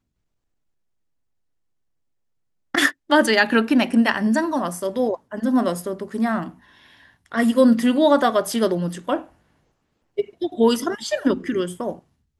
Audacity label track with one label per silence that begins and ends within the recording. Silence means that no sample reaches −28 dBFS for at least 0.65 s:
6.490000	7.320000	silence
9.210000	10.180000	silence